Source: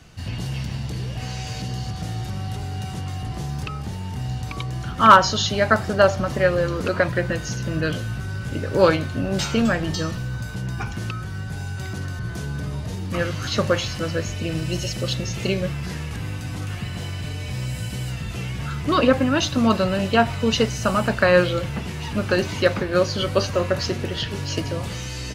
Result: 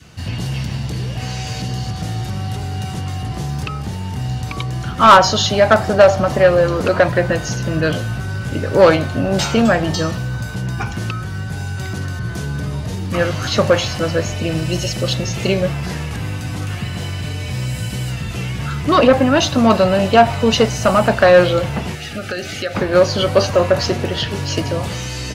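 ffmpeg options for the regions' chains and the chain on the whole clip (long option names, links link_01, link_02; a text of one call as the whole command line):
ffmpeg -i in.wav -filter_complex "[0:a]asettb=1/sr,asplit=3[link_01][link_02][link_03];[link_01]atrim=end=21.954[link_04];[link_02]atrim=start=21.95:end=22.75,asetpts=PTS-STARTPTS,afade=type=in:duration=0.004:curve=qsin,afade=type=out:start_time=0.796:duration=0.004:curve=qsin,lowshelf=frequency=490:gain=-8.5,acompressor=threshold=-27dB:ratio=3:attack=3.2:release=140:knee=1:detection=peak,asuperstop=centerf=1000:order=12:qfactor=2.9[link_05];[link_03]atrim=start=22.746[link_06];[link_04][link_05]acrossfade=duration=0.004:curve1=hsin:curve2=qsin[link_07];[link_07][link_06]acrossfade=duration=0.004:curve1=qsin:curve2=hsin,highpass=55,adynamicequalizer=threshold=0.02:dfrequency=710:dqfactor=1.5:tfrequency=710:tqfactor=1.5:attack=5:release=100:ratio=0.375:range=3.5:mode=boostabove:tftype=bell,acontrast=69,volume=-1dB" out.wav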